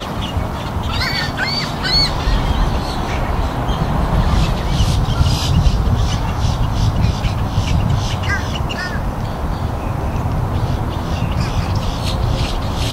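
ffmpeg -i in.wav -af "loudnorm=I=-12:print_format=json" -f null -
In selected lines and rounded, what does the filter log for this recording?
"input_i" : "-18.8",
"input_tp" : "-1.5",
"input_lra" : "3.3",
"input_thresh" : "-28.8",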